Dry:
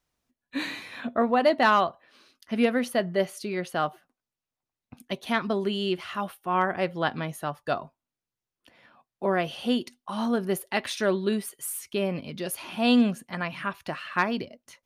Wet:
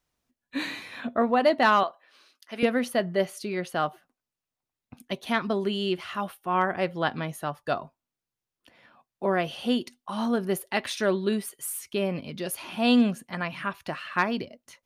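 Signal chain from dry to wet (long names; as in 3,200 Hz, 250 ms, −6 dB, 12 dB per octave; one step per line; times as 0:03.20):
0:01.83–0:02.63: Bessel high-pass filter 550 Hz, order 2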